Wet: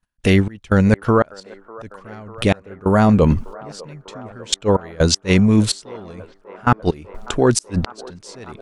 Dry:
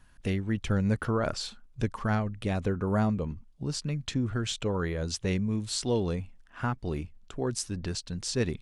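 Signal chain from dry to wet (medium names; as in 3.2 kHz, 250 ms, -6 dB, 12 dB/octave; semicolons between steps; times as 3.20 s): gate -52 dBFS, range -23 dB; bass shelf 210 Hz -6 dB; reverse; compression 10:1, threshold -37 dBFS, peak gain reduction 13.5 dB; reverse; trance gate ".x.xxx..." 63 bpm -24 dB; inverted gate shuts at -30 dBFS, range -34 dB; on a send: feedback echo behind a band-pass 598 ms, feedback 81%, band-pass 810 Hz, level -19 dB; on the sum: loudness maximiser +28 dB; trim -1 dB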